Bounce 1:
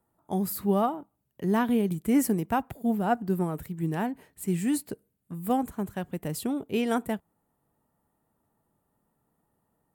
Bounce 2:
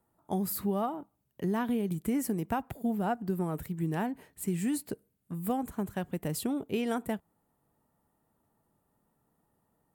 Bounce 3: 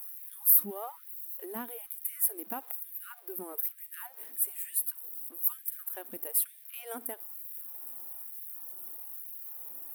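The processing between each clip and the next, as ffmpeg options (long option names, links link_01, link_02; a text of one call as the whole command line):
ffmpeg -i in.wav -af "acompressor=threshold=-27dB:ratio=6" out.wav
ffmpeg -i in.wav -af "aeval=exprs='val(0)+0.5*0.00447*sgn(val(0))':channel_layout=same,aexciter=amount=12.1:drive=6.6:freq=9800,afftfilt=real='re*gte(b*sr/1024,210*pow(1700/210,0.5+0.5*sin(2*PI*1.1*pts/sr)))':imag='im*gte(b*sr/1024,210*pow(1700/210,0.5+0.5*sin(2*PI*1.1*pts/sr)))':win_size=1024:overlap=0.75,volume=-8dB" out.wav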